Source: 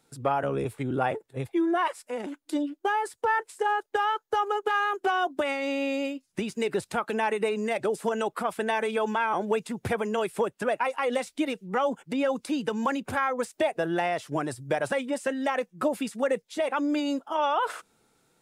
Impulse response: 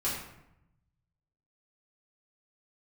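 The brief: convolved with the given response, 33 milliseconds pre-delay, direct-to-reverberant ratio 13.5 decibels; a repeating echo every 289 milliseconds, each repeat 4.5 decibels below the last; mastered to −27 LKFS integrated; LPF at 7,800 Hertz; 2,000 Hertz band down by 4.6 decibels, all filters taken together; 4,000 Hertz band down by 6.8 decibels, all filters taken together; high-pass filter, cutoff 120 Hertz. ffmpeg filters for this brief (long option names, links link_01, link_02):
-filter_complex "[0:a]highpass=120,lowpass=7800,equalizer=frequency=2000:width_type=o:gain=-4.5,equalizer=frequency=4000:width_type=o:gain=-7.5,aecho=1:1:289|578|867|1156|1445|1734|2023|2312|2601:0.596|0.357|0.214|0.129|0.0772|0.0463|0.0278|0.0167|0.01,asplit=2[link_01][link_02];[1:a]atrim=start_sample=2205,adelay=33[link_03];[link_02][link_03]afir=irnorm=-1:irlink=0,volume=-20dB[link_04];[link_01][link_04]amix=inputs=2:normalize=0,volume=0.5dB"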